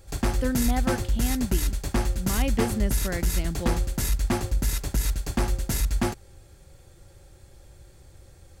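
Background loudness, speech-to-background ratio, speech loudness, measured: −27.5 LKFS, −4.0 dB, −31.5 LKFS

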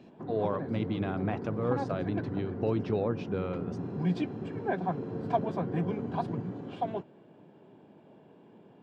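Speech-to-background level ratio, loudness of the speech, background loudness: 1.5 dB, −33.5 LKFS, −35.0 LKFS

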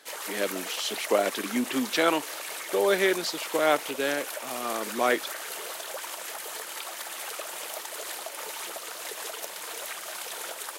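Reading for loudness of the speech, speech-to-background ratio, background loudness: −27.5 LKFS, 7.5 dB, −35.0 LKFS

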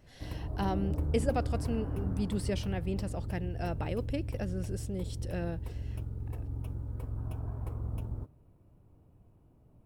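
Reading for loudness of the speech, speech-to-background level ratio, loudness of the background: −36.5 LKFS, 1.5 dB, −38.0 LKFS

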